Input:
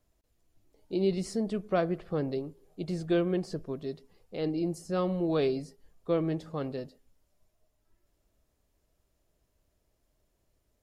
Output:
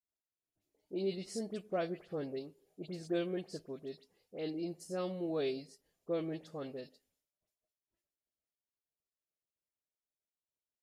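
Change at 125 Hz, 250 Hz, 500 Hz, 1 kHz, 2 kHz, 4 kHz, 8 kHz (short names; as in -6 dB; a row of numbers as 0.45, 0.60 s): -12.0, -9.0, -7.5, -9.0, -7.0, -4.5, -4.0 dB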